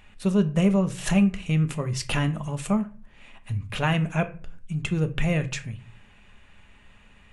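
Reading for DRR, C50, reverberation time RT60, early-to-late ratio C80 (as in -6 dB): 8.0 dB, 16.0 dB, 0.40 s, 21.5 dB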